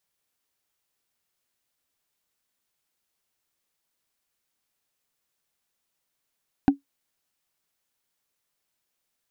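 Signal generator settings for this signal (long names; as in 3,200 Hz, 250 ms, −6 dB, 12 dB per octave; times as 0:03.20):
struck wood, lowest mode 279 Hz, decay 0.13 s, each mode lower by 7.5 dB, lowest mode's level −9 dB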